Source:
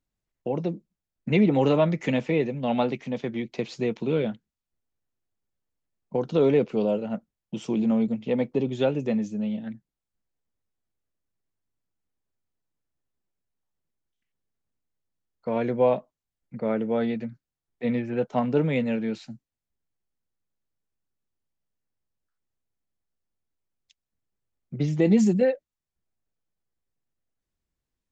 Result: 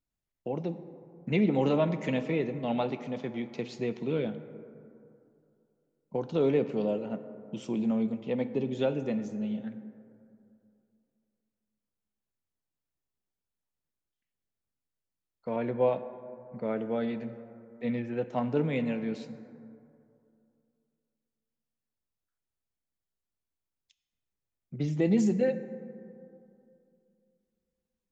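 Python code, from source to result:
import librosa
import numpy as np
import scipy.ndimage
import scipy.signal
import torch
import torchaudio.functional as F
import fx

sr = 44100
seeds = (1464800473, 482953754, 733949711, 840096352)

y = fx.env_lowpass(x, sr, base_hz=1300.0, full_db=-15.5, at=(15.56, 16.56))
y = fx.rev_plate(y, sr, seeds[0], rt60_s=2.6, hf_ratio=0.35, predelay_ms=0, drr_db=10.5)
y = y * 10.0 ** (-5.5 / 20.0)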